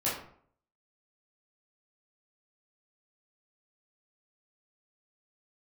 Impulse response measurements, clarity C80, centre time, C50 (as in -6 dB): 8.0 dB, 43 ms, 4.0 dB